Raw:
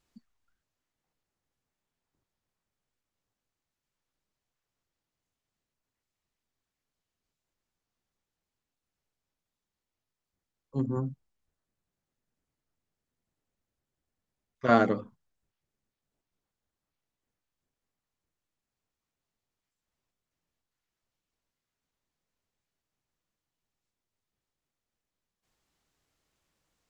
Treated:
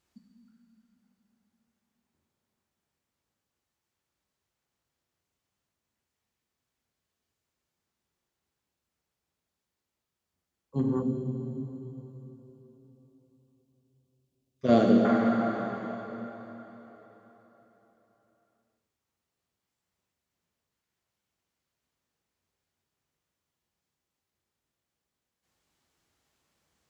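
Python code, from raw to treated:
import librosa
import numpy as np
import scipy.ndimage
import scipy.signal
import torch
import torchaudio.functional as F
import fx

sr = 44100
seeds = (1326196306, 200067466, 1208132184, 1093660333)

y = fx.rev_plate(x, sr, seeds[0], rt60_s=4.2, hf_ratio=0.85, predelay_ms=0, drr_db=-1.0)
y = fx.dynamic_eq(y, sr, hz=210.0, q=1.4, threshold_db=-43.0, ratio=4.0, max_db=5)
y = scipy.signal.sosfilt(scipy.signal.butter(2, 61.0, 'highpass', fs=sr, output='sos'), y)
y = fx.band_shelf(y, sr, hz=1300.0, db=-11.5, octaves=1.7, at=(11.02, 15.05))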